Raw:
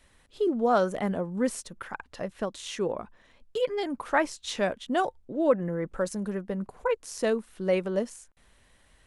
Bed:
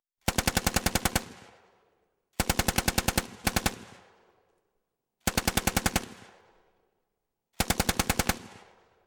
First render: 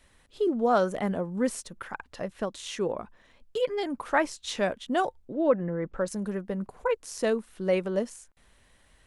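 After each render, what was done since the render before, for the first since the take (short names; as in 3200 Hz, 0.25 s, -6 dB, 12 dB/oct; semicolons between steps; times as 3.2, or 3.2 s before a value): 5.34–6.08 air absorption 120 m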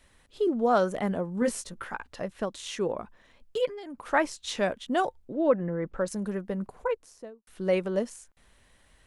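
1.4–2.07 doubler 17 ms -4 dB; 3.66–4.07 compressor, threshold -38 dBFS; 6.67–7.47 studio fade out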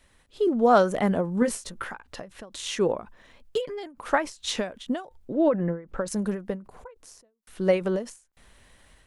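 AGC gain up to 5.5 dB; ending taper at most 160 dB/s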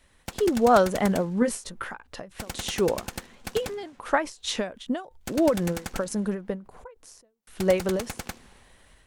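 add bed -9.5 dB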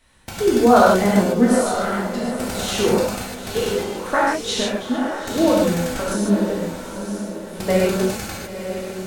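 diffused feedback echo 0.91 s, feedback 42%, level -9 dB; non-linear reverb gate 0.18 s flat, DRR -6 dB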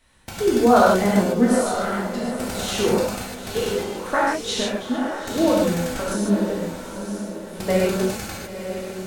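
gain -2 dB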